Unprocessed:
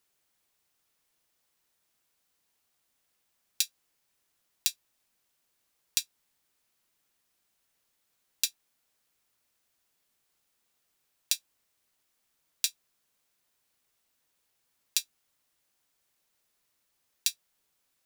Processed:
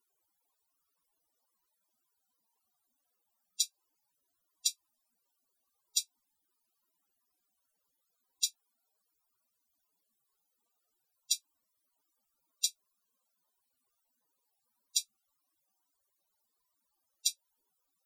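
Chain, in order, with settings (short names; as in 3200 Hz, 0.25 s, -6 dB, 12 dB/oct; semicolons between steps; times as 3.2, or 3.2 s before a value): loudest bins only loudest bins 64; ten-band EQ 125 Hz -5 dB, 250 Hz +7 dB, 1000 Hz +10 dB, 2000 Hz -9 dB, 16000 Hz +6 dB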